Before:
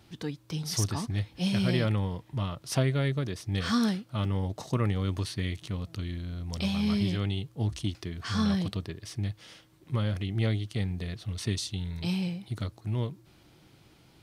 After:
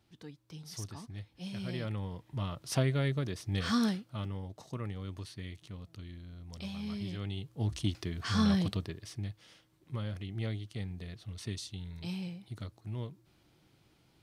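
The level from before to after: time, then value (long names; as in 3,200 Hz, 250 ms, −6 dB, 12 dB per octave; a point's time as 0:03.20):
0:01.51 −13.5 dB
0:02.56 −3 dB
0:03.86 −3 dB
0:04.45 −11.5 dB
0:06.99 −11.5 dB
0:07.87 −0.5 dB
0:08.71 −0.5 dB
0:09.40 −8.5 dB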